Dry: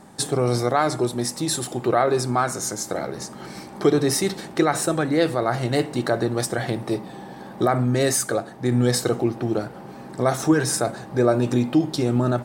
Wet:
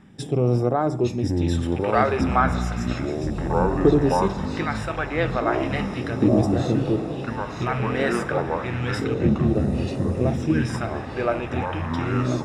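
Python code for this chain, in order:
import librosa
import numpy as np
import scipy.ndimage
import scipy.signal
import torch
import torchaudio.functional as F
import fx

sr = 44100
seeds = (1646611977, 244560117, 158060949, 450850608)

y = fx.rattle_buzz(x, sr, strikes_db=-25.0, level_db=-29.0)
y = scipy.signal.savgol_filter(y, 25, 4, mode='constant')
y = fx.echo_diffused(y, sr, ms=1825, feedback_pct=54, wet_db=-10.0)
y = fx.rider(y, sr, range_db=3, speed_s=2.0)
y = fx.phaser_stages(y, sr, stages=2, low_hz=170.0, high_hz=2200.0, hz=0.33, feedback_pct=40)
y = fx.echo_pitch(y, sr, ms=778, semitones=-6, count=3, db_per_echo=-3.0)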